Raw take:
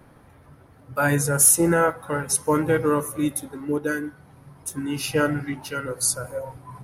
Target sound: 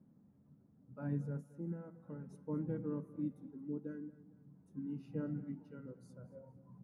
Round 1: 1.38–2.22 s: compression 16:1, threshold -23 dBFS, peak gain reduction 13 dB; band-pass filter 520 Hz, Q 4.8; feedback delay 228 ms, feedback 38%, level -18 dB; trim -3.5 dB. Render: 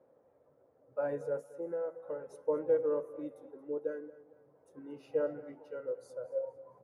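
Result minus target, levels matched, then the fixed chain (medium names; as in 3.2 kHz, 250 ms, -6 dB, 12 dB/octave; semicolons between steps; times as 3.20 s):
250 Hz band -10.5 dB
1.38–2.22 s: compression 16:1, threshold -23 dBFS, peak gain reduction 13 dB; band-pass filter 200 Hz, Q 4.8; feedback delay 228 ms, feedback 38%, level -18 dB; trim -3.5 dB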